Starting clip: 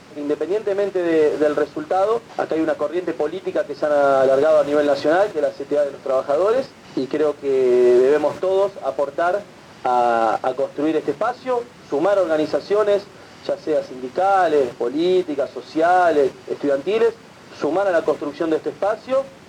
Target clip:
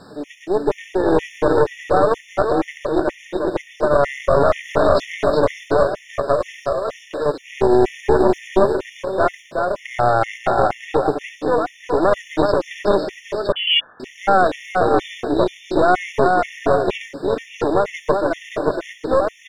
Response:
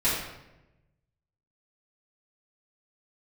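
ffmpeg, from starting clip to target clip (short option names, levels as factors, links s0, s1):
-filter_complex "[0:a]asettb=1/sr,asplit=3[s0][s1][s2];[s0]atrim=end=6.364[s3];[s1]atrim=start=6.36:end=7.26,asetpts=PTS-STARTPTS,afade=t=in:d=0.004:c=qsin,afade=t=out:st=0.896:d=0.004:c=qsin,highpass=f=1000:p=1[s4];[s2]atrim=start=7.256[s5];[s3][s4]acrossfade=d=0.004:c1=hsin:c2=qsin[s6];[s6][s5]acrossfade=d=0.004:c1=qsin:c2=hsin,aecho=1:1:370|592|725.2|805.1|853.1:0.631|0.398|0.251|0.158|0.1,aeval=exprs='0.891*(cos(1*acos(clip(val(0)/0.891,-1,1)))-cos(1*PI/2))+0.224*(cos(4*acos(clip(val(0)/0.891,-1,1)))-cos(4*PI/2))':c=same,asettb=1/sr,asplit=3[s7][s8][s9];[s7]atrim=end=13.524[s10];[s8]atrim=start=13.52:end=14,asetpts=PTS-STARTPTS,afade=t=in:d=0.004:c=qsin,afade=t=out:st=0.476:d=0.004:c=qsin,lowpass=f=2900:t=q:w=0.5098,lowpass=f=2900:t=q:w=0.6013,lowpass=f=2900:t=q:w=0.9,lowpass=f=2900:t=q:w=2.563,afreqshift=-3400[s11];[s9]atrim=start=13.996[s12];[s10][s11]acrossfade=d=0.004:c1=hsin:c2=qsin[s13];[s13][s12]acrossfade=d=0.004:c1=qsin:c2=hsin,alimiter=level_in=1.33:limit=0.891:release=50:level=0:latency=1,afftfilt=real='re*gt(sin(2*PI*2.1*pts/sr)*(1-2*mod(floor(b*sr/1024/1800),2)),0)':imag='im*gt(sin(2*PI*2.1*pts/sr)*(1-2*mod(floor(b*sr/1024/1800),2)),0)':win_size=1024:overlap=0.75,volume=0.891"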